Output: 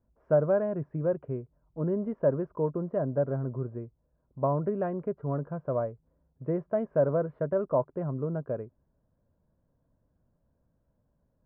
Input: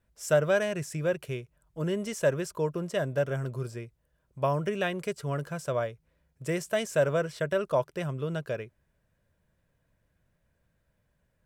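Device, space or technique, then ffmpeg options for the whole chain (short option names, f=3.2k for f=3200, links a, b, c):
under water: -af "lowpass=f=1.1k:w=0.5412,lowpass=f=1.1k:w=1.3066,equalizer=f=260:t=o:w=0.42:g=7"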